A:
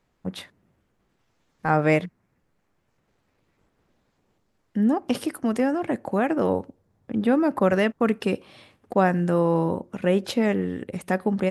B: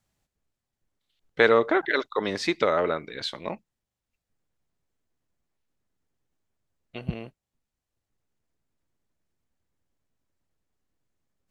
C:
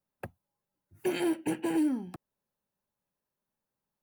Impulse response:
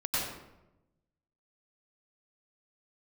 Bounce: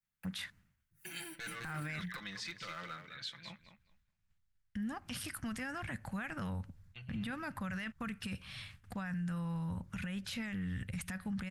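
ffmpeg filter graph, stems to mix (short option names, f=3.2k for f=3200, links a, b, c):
-filter_complex "[0:a]agate=range=-33dB:threshold=-57dB:ratio=3:detection=peak,asubboost=boost=8:cutoff=97,acompressor=threshold=-28dB:ratio=6,volume=-1.5dB[a];[1:a]agate=range=-11dB:threshold=-42dB:ratio=16:detection=peak,equalizer=f=120:w=5.3:g=10.5,asoftclip=type=hard:threshold=-16.5dB,volume=-16dB,asplit=2[b][c];[c]volume=-9dB[d];[2:a]highshelf=f=5.9k:g=6,dynaudnorm=f=270:g=9:m=8dB,volume=-16.5dB[e];[b][e]amix=inputs=2:normalize=0,aecho=1:1:5.9:0.65,alimiter=level_in=8dB:limit=-24dB:level=0:latency=1:release=74,volume=-8dB,volume=0dB[f];[d]aecho=0:1:208|416|624:1|0.16|0.0256[g];[a][f][g]amix=inputs=3:normalize=0,firequalizer=gain_entry='entry(180,0);entry(370,-17);entry(1500,5)':delay=0.05:min_phase=1,alimiter=level_in=8.5dB:limit=-24dB:level=0:latency=1:release=13,volume=-8.5dB"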